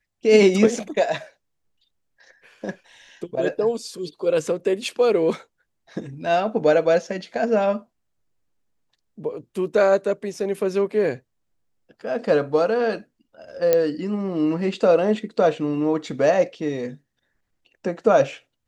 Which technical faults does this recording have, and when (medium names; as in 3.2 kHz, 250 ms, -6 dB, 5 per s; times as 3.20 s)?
13.73 s: pop -5 dBFS